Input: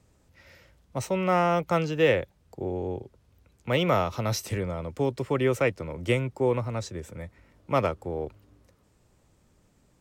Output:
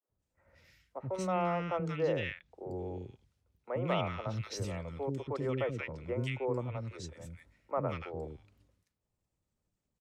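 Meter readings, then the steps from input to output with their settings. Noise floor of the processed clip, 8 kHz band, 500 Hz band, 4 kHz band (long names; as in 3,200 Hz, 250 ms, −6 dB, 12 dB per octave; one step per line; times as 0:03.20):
below −85 dBFS, −10.5 dB, −9.0 dB, −10.0 dB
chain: treble cut that deepens with the level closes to 2,800 Hz, closed at −19.5 dBFS
downward expander −53 dBFS
three-band delay without the direct sound mids, lows, highs 80/180 ms, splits 350/1,500 Hz
level −7 dB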